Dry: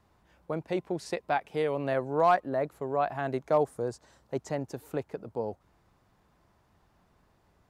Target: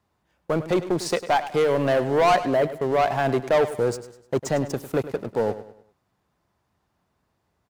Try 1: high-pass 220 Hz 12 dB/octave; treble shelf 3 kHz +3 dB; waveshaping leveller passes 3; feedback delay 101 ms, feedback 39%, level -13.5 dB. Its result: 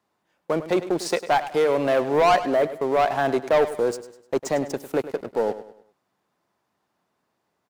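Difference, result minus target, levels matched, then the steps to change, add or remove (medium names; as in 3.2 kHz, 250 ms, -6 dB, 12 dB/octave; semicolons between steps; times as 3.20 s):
125 Hz band -7.0 dB
change: high-pass 59 Hz 12 dB/octave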